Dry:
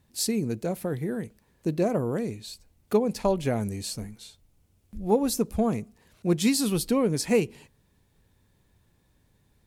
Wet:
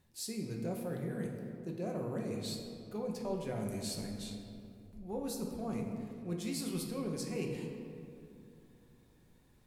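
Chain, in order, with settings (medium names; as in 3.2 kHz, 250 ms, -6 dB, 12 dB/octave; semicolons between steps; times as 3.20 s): hum notches 50/100/150/200/250/300/350 Hz; reverse; compression 6:1, threshold -36 dBFS, peak gain reduction 17.5 dB; reverse; reverberation RT60 2.7 s, pre-delay 5 ms, DRR 0 dB; trim -3 dB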